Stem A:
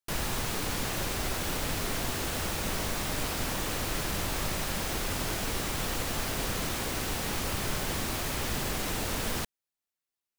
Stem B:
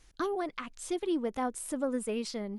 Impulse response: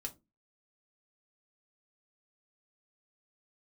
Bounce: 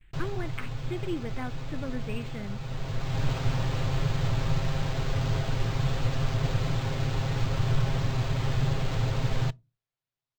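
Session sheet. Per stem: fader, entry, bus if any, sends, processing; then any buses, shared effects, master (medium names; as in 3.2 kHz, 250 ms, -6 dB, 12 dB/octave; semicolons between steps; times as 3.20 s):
-4.0 dB, 0.05 s, send -13 dB, tilt shelf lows +5.5 dB, about 860 Hz; comb 7.5 ms, depth 92%; auto duck -12 dB, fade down 0.35 s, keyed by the second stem
+1.5 dB, 0.00 s, send -9 dB, steep low-pass 2.9 kHz; gate with hold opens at -58 dBFS; high-order bell 750 Hz -10.5 dB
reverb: on, RT60 0.25 s, pre-delay 4 ms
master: graphic EQ 125/250/4000/8000 Hz +11/-10/+6/-7 dB; decimation joined by straight lines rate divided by 4×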